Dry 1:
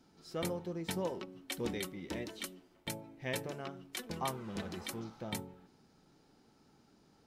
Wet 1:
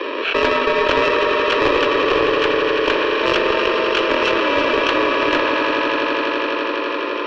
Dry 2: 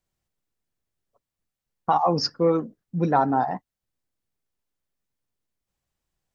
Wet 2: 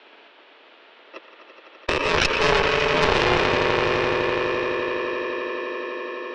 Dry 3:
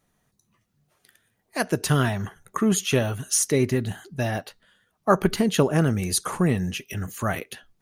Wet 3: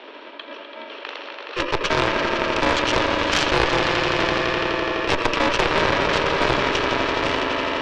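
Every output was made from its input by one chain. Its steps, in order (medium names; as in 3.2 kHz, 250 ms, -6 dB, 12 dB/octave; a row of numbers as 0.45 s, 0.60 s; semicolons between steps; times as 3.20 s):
bit-reversed sample order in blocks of 64 samples; echo with a slow build-up 84 ms, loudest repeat 5, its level -11 dB; mistuned SSB +85 Hz 280–3400 Hz; on a send: band-passed feedback delay 118 ms, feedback 82%, band-pass 1.3 kHz, level -10 dB; on the sum: Chebyshev shaper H 7 -23 dB, 8 -15 dB, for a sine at -6 dBFS; level flattener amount 70%; peak normalisation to -1.5 dBFS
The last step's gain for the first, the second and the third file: +30.0 dB, +9.0 dB, +5.0 dB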